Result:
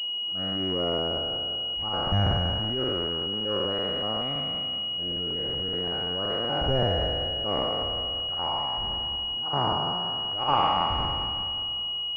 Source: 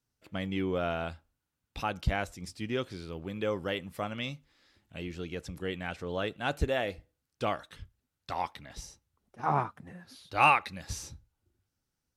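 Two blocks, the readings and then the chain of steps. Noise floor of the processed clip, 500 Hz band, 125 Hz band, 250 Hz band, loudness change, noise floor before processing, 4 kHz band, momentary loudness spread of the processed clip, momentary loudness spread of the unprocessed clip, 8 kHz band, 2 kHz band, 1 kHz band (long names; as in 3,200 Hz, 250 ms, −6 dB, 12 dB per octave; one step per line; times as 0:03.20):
−31 dBFS, +5.0 dB, +7.0 dB, +3.5 dB, +6.5 dB, −85 dBFS, +21.0 dB, 4 LU, 17 LU, below −15 dB, −5.0 dB, +3.5 dB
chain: peak hold with a decay on every bin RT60 2.37 s
transient designer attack −11 dB, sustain +7 dB
noise in a band 200–1,100 Hz −58 dBFS
regular buffer underruns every 0.19 s, samples 2,048, repeat, from 0:00.89
switching amplifier with a slow clock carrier 2,900 Hz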